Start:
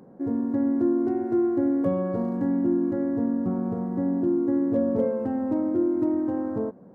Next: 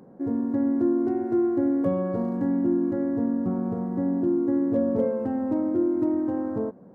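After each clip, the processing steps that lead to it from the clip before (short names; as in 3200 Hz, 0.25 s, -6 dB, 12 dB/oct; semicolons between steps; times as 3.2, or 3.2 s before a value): nothing audible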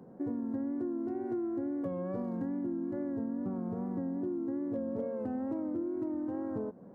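wow and flutter 59 cents; compressor 6:1, threshold -30 dBFS, peak gain reduction 11 dB; gain -2.5 dB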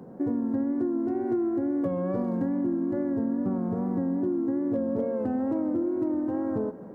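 thinning echo 0.134 s, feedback 85%, high-pass 210 Hz, level -18 dB; gain +7.5 dB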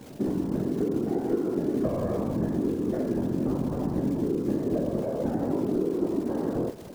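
crackle 410/s -38 dBFS; whisperiser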